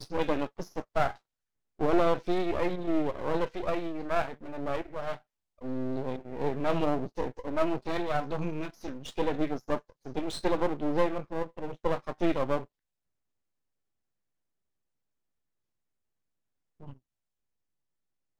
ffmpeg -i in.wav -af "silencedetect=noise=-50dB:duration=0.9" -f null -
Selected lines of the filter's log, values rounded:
silence_start: 12.65
silence_end: 16.80 | silence_duration: 4.15
silence_start: 16.97
silence_end: 18.40 | silence_duration: 1.43